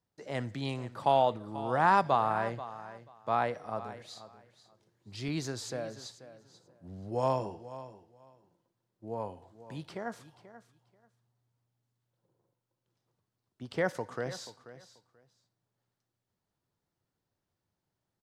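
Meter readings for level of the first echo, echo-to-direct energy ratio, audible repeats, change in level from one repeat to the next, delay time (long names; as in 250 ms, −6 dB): −15.0 dB, −15.0 dB, 2, −15.0 dB, 485 ms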